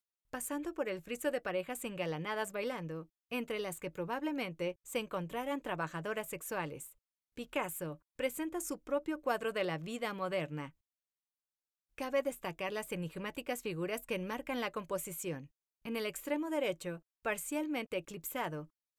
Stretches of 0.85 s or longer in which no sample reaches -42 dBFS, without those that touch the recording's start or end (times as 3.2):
10.67–11.98